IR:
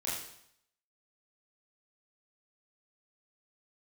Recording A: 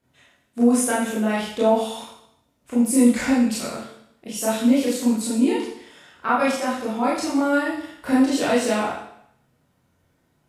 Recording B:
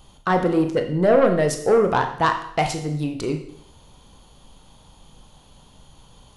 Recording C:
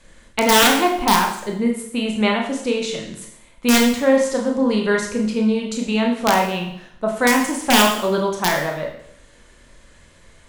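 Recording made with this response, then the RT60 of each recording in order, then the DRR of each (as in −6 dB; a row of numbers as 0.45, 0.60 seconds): A; 0.70, 0.70, 0.70 seconds; −8.5, 5.0, 0.5 decibels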